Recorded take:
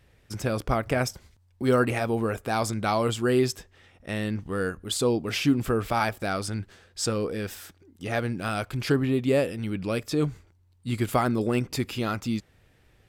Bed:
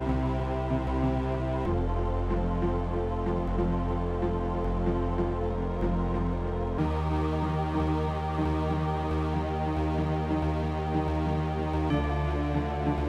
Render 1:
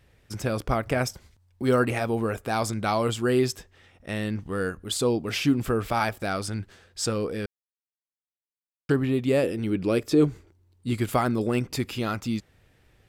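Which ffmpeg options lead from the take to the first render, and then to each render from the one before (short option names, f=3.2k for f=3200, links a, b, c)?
-filter_complex "[0:a]asettb=1/sr,asplit=3[a][b][c];[a]atrim=end=9.434[d];[b]atrim=start=9.43:end=10.93,asetpts=PTS-STARTPTS,afade=t=in:d=0.004:c=qsin,afade=t=out:st=1.496:d=0.004:c=qsin,equalizer=f=360:w=1.5:g=9[e];[c]atrim=start=10.926[f];[d][e]acrossfade=d=0.004:c1=hsin:c2=qsin[g];[g][f]acrossfade=d=0.004:c1=qsin:c2=hsin,asplit=3[h][i][j];[h]atrim=end=7.46,asetpts=PTS-STARTPTS,afade=t=out:st=7.456:d=0.004:c=hsin[k];[i]atrim=start=7.46:end=8.89,asetpts=PTS-STARTPTS,volume=0[l];[j]atrim=start=8.89,asetpts=PTS-STARTPTS,afade=t=in:d=0.004:c=hsin[m];[k][l][m]concat=n=3:v=0:a=1"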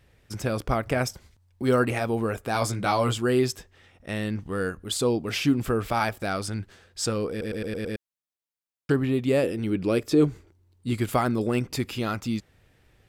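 -filter_complex "[0:a]asettb=1/sr,asplit=3[a][b][c];[a]atrim=end=2.534[d];[b]atrim=start=2.53:end=3.18,asetpts=PTS-STARTPTS,afade=t=in:d=0.004:c=qsin,afade=t=out:st=0.646:d=0.004:c=qsin,asplit=2[e][f];[f]adelay=16,volume=-4dB[g];[e][g]amix=inputs=2:normalize=0,atrim=end_sample=28665[h];[c]atrim=start=3.176[i];[d][h]acrossfade=d=0.004:c1=hsin:c2=qsin[j];[j][i]acrossfade=d=0.004:c1=qsin:c2=hsin,asplit=7[k][l][m][n][o][p][q];[k]atrim=end=7.412[r];[l]atrim=start=7.298:end=7.412[s];[m]atrim=start=7.298:end=7.412[t];[n]atrim=start=7.298:end=7.412[u];[o]atrim=start=7.298:end=7.412[v];[p]atrim=start=7.298:end=7.412[w];[q]atrim=start=7.958[x];[r][s]acrossfade=d=0.004:c1=hsin:c2=hsin[y];[y][t]acrossfade=d=0.004:c1=hsin:c2=hsin[z];[z][u]acrossfade=d=0.004:c1=hsin:c2=hsin[aa];[aa][v]acrossfade=d=0.004:c1=hsin:c2=hsin[ab];[ab][w]acrossfade=d=0.004:c1=hsin:c2=hsin[ac];[ac][x]acrossfade=d=0.004:c1=hsin:c2=hsin"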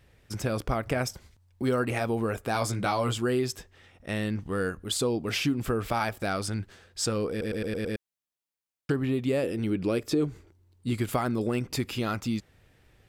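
-af "acompressor=threshold=-24dB:ratio=3"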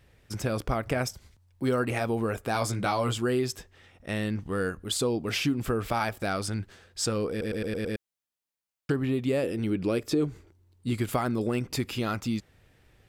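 -filter_complex "[0:a]asettb=1/sr,asplit=3[a][b][c];[a]atrim=end=1.094[d];[b]atrim=start=1.09:end=1.62,asetpts=PTS-STARTPTS,afade=t=in:d=0.004:c=qsin,afade=t=out:st=0.526:d=0.004:c=qsin,acrossover=split=150|3000[e][f][g];[f]acompressor=threshold=-56dB:ratio=6:attack=3.2:release=140:knee=2.83:detection=peak[h];[e][h][g]amix=inputs=3:normalize=0[i];[c]atrim=start=1.616[j];[d][i]acrossfade=d=0.004:c1=hsin:c2=qsin[k];[k][j]acrossfade=d=0.004:c1=qsin:c2=hsin"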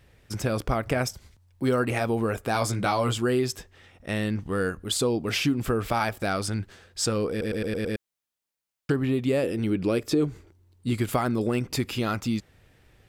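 -af "volume=2.5dB"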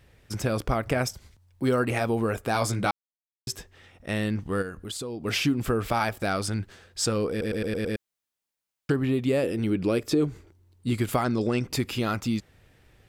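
-filter_complex "[0:a]asplit=3[a][b][c];[a]afade=t=out:st=4.61:d=0.02[d];[b]acompressor=threshold=-34dB:ratio=3:attack=3.2:release=140:knee=1:detection=peak,afade=t=in:st=4.61:d=0.02,afade=t=out:st=5.24:d=0.02[e];[c]afade=t=in:st=5.24:d=0.02[f];[d][e][f]amix=inputs=3:normalize=0,asettb=1/sr,asplit=3[g][h][i];[g]atrim=end=11.244[j];[h]atrim=start=11.24:end=11.64,asetpts=PTS-STARTPTS,afade=t=in:d=0.004:c=qsin,afade=t=out:st=0.396:d=0.004:c=qsin,lowpass=f=5.8k:t=q:w=2.2[k];[i]atrim=start=11.636[l];[j][k]acrossfade=d=0.004:c1=hsin:c2=qsin[m];[m][l]acrossfade=d=0.004:c1=qsin:c2=hsin,asplit=3[n][o][p];[n]atrim=end=2.91,asetpts=PTS-STARTPTS,afade=t=out:st=2.906:d=0.004:c=hsin[q];[o]atrim=start=2.91:end=3.47,asetpts=PTS-STARTPTS,volume=0[r];[p]atrim=start=3.47,asetpts=PTS-STARTPTS,afade=t=in:d=0.004:c=hsin[s];[q][r][s]concat=n=3:v=0:a=1"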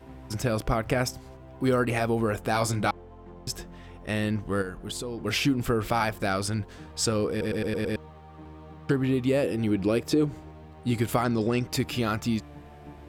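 -filter_complex "[1:a]volume=-17.5dB[a];[0:a][a]amix=inputs=2:normalize=0"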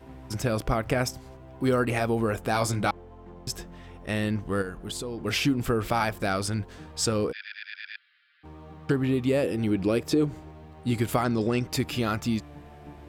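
-filter_complex "[0:a]asplit=3[a][b][c];[a]afade=t=out:st=7.31:d=0.02[d];[b]asuperpass=centerf=2700:order=20:qfactor=0.75,afade=t=in:st=7.31:d=0.02,afade=t=out:st=8.43:d=0.02[e];[c]afade=t=in:st=8.43:d=0.02[f];[d][e][f]amix=inputs=3:normalize=0"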